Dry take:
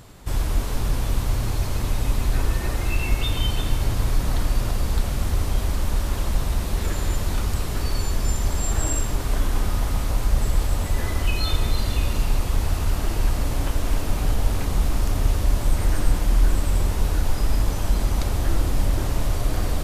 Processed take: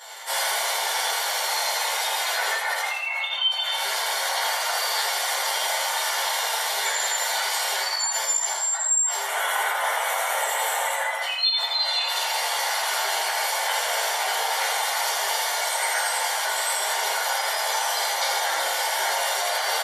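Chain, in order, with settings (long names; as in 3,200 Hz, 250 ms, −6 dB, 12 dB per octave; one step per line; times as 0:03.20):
Bessel high-pass filter 950 Hz, order 6
gate on every frequency bin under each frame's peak −15 dB strong
0:09.20–0:11.20: parametric band 4,800 Hz −14 dB 0.59 octaves
speech leveller within 4 dB 0.5 s
notch comb filter 1,300 Hz
repeating echo 82 ms, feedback 43%, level −6 dB
convolution reverb RT60 0.35 s, pre-delay 7 ms, DRR −9.5 dB
level +3 dB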